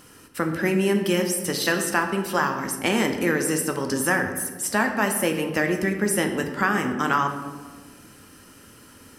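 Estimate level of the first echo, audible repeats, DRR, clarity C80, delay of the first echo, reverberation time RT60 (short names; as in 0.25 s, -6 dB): none, none, 4.5 dB, 9.0 dB, none, 1.5 s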